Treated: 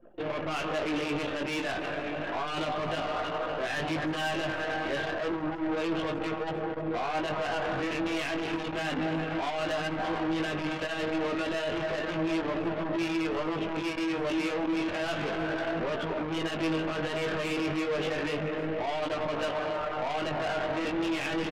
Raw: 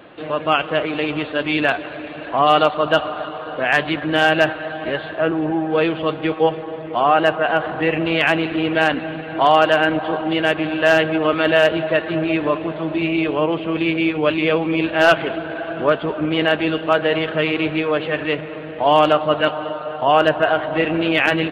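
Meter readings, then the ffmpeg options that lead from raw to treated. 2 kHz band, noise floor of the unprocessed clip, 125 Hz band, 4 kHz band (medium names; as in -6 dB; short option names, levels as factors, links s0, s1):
-13.5 dB, -31 dBFS, -10.0 dB, -12.0 dB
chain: -filter_complex "[0:a]acrossover=split=410|3000[s0][s1][s2];[s1]acompressor=threshold=0.1:ratio=2[s3];[s0][s3][s2]amix=inputs=3:normalize=0,asplit=2[s4][s5];[s5]acrusher=bits=4:dc=4:mix=0:aa=0.000001,volume=0.562[s6];[s4][s6]amix=inputs=2:normalize=0,alimiter=limit=0.251:level=0:latency=1:release=24,asoftclip=type=hard:threshold=0.0398,flanger=delay=9:depth=3.3:regen=-79:speed=0.15:shape=sinusoidal,acontrast=57,flanger=delay=17.5:depth=4.1:speed=0.31,anlmdn=6.31,aecho=1:1:311:0.112"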